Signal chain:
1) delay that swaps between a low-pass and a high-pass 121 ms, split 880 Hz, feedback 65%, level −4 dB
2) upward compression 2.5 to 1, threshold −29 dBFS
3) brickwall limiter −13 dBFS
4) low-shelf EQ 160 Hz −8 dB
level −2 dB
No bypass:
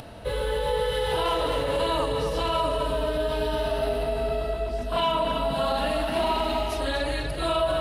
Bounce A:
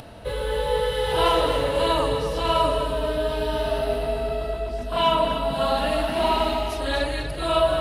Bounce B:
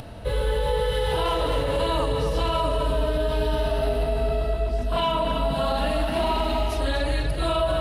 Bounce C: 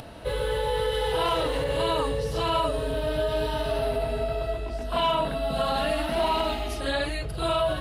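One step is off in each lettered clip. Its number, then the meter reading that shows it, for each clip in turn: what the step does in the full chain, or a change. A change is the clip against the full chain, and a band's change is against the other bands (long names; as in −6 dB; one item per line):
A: 3, average gain reduction 2.0 dB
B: 4, 125 Hz band +6.0 dB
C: 1, change in momentary loudness spread +2 LU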